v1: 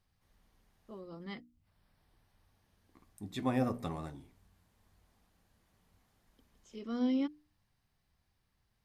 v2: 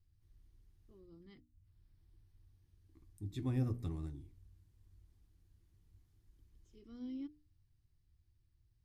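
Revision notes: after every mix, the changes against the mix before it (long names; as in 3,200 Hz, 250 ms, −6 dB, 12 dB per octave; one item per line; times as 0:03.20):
second voice +7.0 dB
master: add drawn EQ curve 110 Hz 0 dB, 220 Hz −18 dB, 320 Hz −6 dB, 580 Hz −26 dB, 5,200 Hz −15 dB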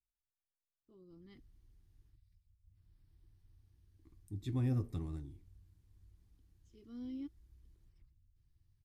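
second voice: entry +1.10 s
master: remove mains-hum notches 60/120/180/240/300 Hz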